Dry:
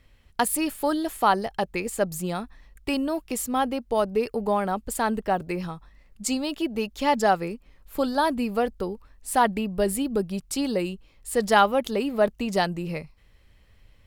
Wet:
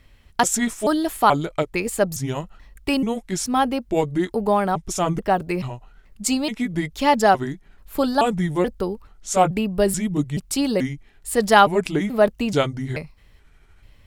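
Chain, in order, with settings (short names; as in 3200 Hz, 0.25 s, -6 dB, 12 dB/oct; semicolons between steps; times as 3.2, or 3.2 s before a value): trilling pitch shifter -5 st, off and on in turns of 0.432 s; notch 510 Hz, Q 12; gain +5 dB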